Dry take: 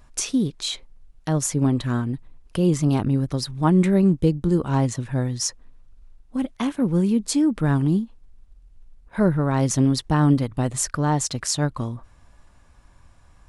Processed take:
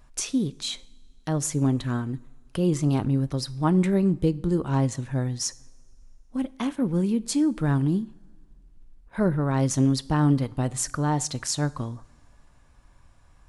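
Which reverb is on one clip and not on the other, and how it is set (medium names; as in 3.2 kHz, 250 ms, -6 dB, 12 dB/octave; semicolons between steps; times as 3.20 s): two-slope reverb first 0.54 s, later 2.3 s, from -18 dB, DRR 17 dB; trim -3.5 dB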